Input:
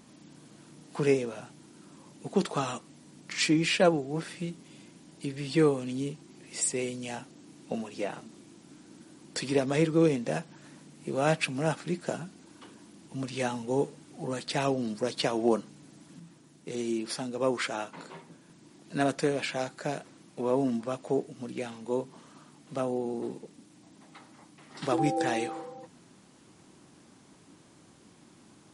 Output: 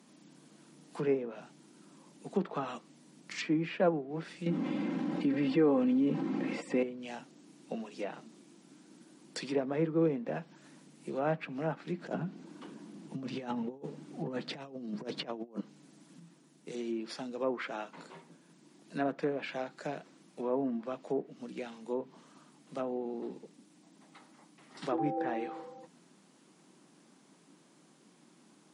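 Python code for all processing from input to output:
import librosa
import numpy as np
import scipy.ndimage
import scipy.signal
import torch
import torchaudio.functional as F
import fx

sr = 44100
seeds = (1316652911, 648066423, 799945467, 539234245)

y = fx.chain(x, sr, fx.comb(ms=3.8, depth=0.56),
    fx.env_flatten(amount_pct=70), at=(4.46, 6.83))
y = fx.chain(y, sr, fx.tilt_eq(slope=-2.0),
    fx.over_compress(threshold_db=-32.0, ratio=-0.5), at=(12.0, 15.61))
y = scipy.signal.sosfilt(scipy.signal.butter(8, 150.0, 'highpass', fs=sr, output='sos'), y)
y = fx.env_lowpass_down(y, sr, base_hz=1600.0, full_db=-24.5)
y = y * librosa.db_to_amplitude(-5.0)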